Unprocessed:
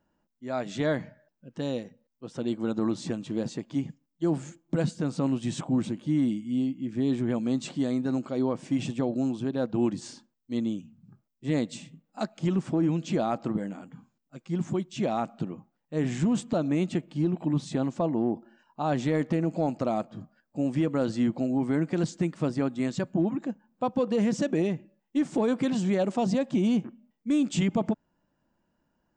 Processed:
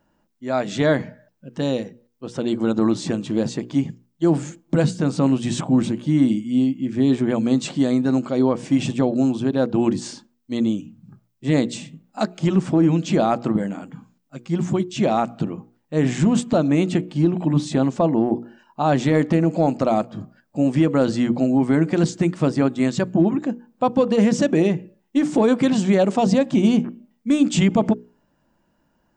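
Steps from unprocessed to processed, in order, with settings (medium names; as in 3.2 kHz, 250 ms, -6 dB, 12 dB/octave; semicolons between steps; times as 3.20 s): hum notches 60/120/180/240/300/360/420/480 Hz; trim +9 dB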